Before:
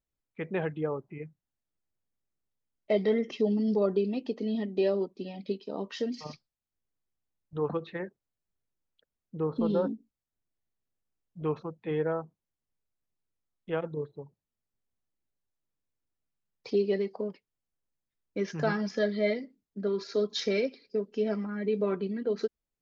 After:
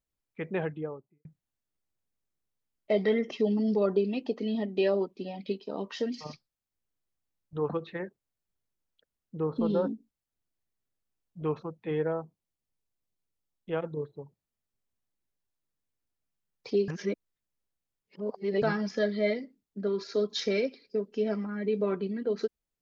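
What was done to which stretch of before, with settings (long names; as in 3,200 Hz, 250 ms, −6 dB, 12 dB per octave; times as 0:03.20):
0:00.55–0:01.25: fade out and dull
0:02.97–0:06.17: auto-filter bell 3 Hz 650–3,000 Hz +8 dB
0:12.08–0:13.76: parametric band 1,500 Hz −4 dB 0.93 octaves
0:16.88–0:18.62: reverse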